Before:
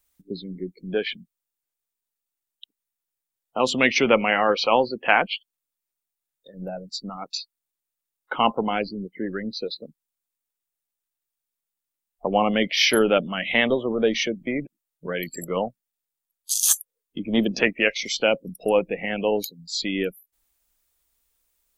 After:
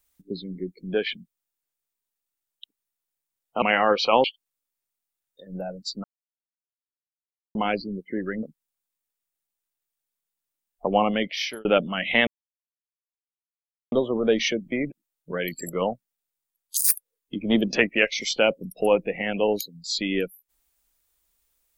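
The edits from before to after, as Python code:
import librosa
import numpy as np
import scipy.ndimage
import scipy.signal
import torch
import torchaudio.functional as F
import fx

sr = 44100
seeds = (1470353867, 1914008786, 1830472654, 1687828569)

y = fx.edit(x, sr, fx.cut(start_s=3.62, length_s=0.59),
    fx.cut(start_s=4.83, length_s=0.48),
    fx.silence(start_s=7.11, length_s=1.51),
    fx.cut(start_s=9.5, length_s=0.33),
    fx.fade_out_span(start_s=12.37, length_s=0.68),
    fx.insert_silence(at_s=13.67, length_s=1.65),
    fx.speed_span(start_s=16.52, length_s=0.27, speed=1.47), tone=tone)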